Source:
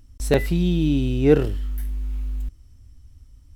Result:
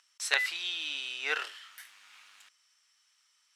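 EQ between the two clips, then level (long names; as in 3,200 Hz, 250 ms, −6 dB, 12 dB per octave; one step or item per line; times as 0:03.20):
four-pole ladder high-pass 1,000 Hz, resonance 25%
high-frequency loss of the air 80 metres
high-shelf EQ 2,200 Hz +9.5 dB
+5.0 dB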